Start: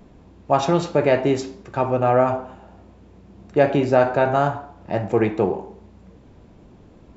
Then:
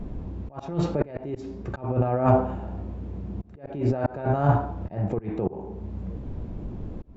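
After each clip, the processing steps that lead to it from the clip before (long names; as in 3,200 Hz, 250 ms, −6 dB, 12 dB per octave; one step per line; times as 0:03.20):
compressor whose output falls as the input rises −23 dBFS, ratio −1
volume swells 468 ms
spectral tilt −3 dB per octave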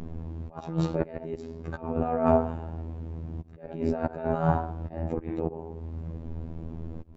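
phases set to zero 81.5 Hz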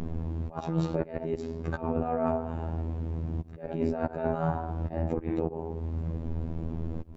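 downward compressor 10 to 1, threshold −27 dBFS, peak gain reduction 13 dB
level +4 dB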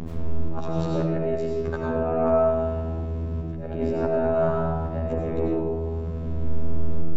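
convolution reverb RT60 1.1 s, pre-delay 55 ms, DRR −1.5 dB
level +1.5 dB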